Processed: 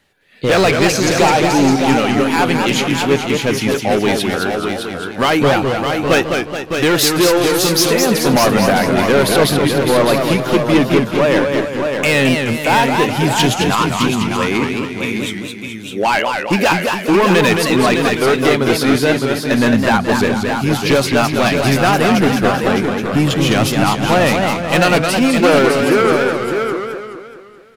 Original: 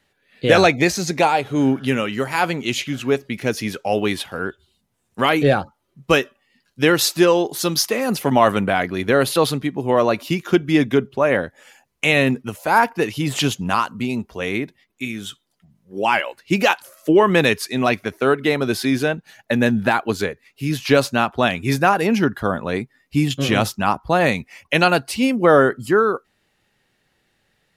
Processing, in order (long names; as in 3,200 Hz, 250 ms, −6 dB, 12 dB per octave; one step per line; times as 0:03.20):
hard clipping −15 dBFS, distortion −9 dB
single-tap delay 610 ms −6 dB
feedback echo with a swinging delay time 212 ms, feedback 51%, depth 174 cents, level −5 dB
level +5.5 dB